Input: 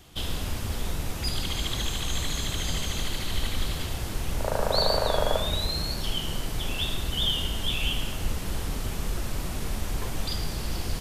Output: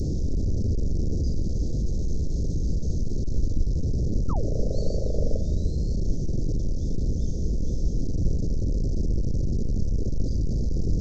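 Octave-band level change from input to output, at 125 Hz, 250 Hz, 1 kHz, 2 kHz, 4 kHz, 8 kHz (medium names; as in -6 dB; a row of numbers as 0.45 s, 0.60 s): +6.5 dB, +6.0 dB, -15.0 dB, under -40 dB, -21.5 dB, -11.0 dB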